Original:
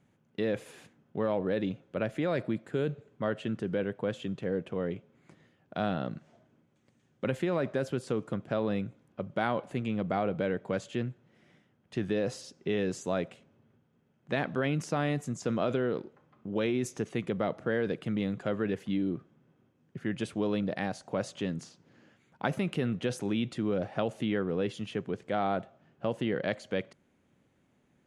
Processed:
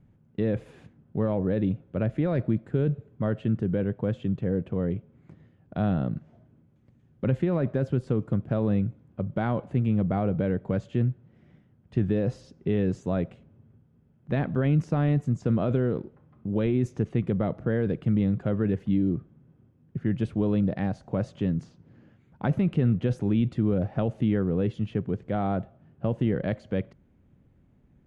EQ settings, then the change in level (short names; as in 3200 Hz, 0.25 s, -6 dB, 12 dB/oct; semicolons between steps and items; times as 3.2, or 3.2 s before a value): RIAA curve playback; low shelf 79 Hz +6 dB; -1.5 dB